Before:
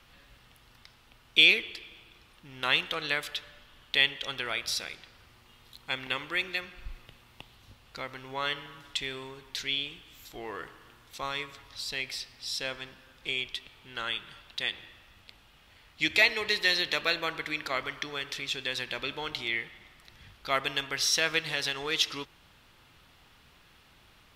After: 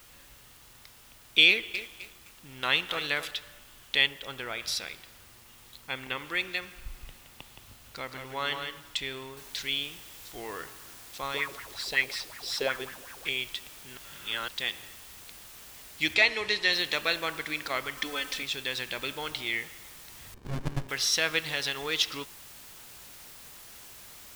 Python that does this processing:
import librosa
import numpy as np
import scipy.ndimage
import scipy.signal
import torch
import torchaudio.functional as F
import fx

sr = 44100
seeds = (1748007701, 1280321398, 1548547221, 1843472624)

y = fx.echo_crushed(x, sr, ms=259, feedback_pct=35, bits=7, wet_db=-10.5, at=(1.48, 3.31))
y = fx.high_shelf(y, sr, hz=2300.0, db=-9.5, at=(4.06, 4.58), fade=0.02)
y = fx.air_absorb(y, sr, metres=180.0, at=(5.81, 6.25))
y = fx.echo_single(y, sr, ms=170, db=-6.0, at=(6.84, 8.8))
y = fx.noise_floor_step(y, sr, seeds[0], at_s=9.37, before_db=-56, after_db=-49, tilt_db=0.0)
y = fx.bell_lfo(y, sr, hz=5.4, low_hz=350.0, high_hz=2000.0, db=15, at=(11.34, 13.29))
y = fx.lowpass(y, sr, hz=7500.0, slope=12, at=(16.14, 16.73))
y = fx.comb(y, sr, ms=3.9, depth=0.91, at=(17.97, 18.43))
y = fx.running_max(y, sr, window=65, at=(20.34, 20.89))
y = fx.edit(y, sr, fx.reverse_span(start_s=13.97, length_s=0.51), tone=tone)